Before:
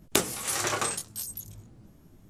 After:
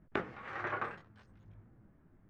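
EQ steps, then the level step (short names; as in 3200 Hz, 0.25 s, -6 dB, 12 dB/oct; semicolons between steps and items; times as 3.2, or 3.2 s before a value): ladder low-pass 2100 Hz, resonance 40%; -1.0 dB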